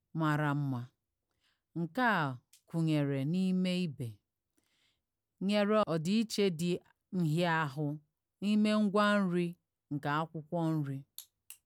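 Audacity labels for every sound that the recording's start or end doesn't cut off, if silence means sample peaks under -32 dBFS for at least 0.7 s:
1.770000	4.050000	sound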